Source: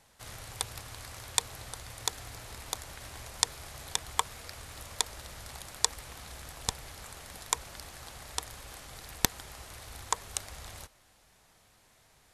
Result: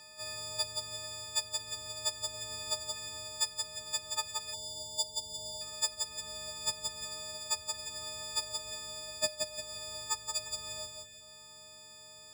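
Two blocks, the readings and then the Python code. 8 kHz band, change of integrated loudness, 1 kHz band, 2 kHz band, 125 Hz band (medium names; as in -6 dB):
-0.5 dB, +0.5 dB, -6.0 dB, -3.0 dB, -9.0 dB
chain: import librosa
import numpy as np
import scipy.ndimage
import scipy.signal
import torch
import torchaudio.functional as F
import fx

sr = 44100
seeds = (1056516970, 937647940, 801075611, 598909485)

y = fx.freq_snap(x, sr, grid_st=6)
y = scipy.signal.sosfilt(scipy.signal.butter(2, 48.0, 'highpass', fs=sr, output='sos'), y)
y = fx.peak_eq(y, sr, hz=510.0, db=-3.5, octaves=0.71)
y = fx.comb_fb(y, sr, f0_hz=92.0, decay_s=0.66, harmonics='all', damping=0.0, mix_pct=50)
y = fx.echo_feedback(y, sr, ms=173, feedback_pct=30, wet_db=-6)
y = fx.rider(y, sr, range_db=3, speed_s=0.5)
y = np.repeat(y[::3], 3)[:len(y)]
y = fx.spec_erase(y, sr, start_s=4.53, length_s=1.08, low_hz=930.0, high_hz=2800.0)
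y = fx.high_shelf(y, sr, hz=10000.0, db=-11.5)
y = fx.band_squash(y, sr, depth_pct=40)
y = y * librosa.db_to_amplitude(-5.0)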